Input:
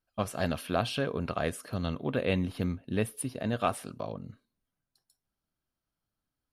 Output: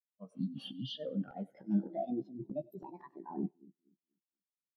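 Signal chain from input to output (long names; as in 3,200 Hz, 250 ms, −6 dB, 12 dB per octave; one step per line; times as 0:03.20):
gliding playback speed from 92% → 182%
high-pass filter 160 Hz 24 dB per octave
healed spectral selection 0:00.34–0:00.85, 350–3,400 Hz both
low-pass filter 8,200 Hz
volume swells 505 ms
compressor whose output falls as the input rises −45 dBFS, ratio −1
double-tracking delay 15 ms −7 dB
echo with a time of its own for lows and highs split 480 Hz, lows 241 ms, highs 95 ms, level −11 dB
wave folding −36 dBFS
every bin expanded away from the loudest bin 2.5 to 1
level +14.5 dB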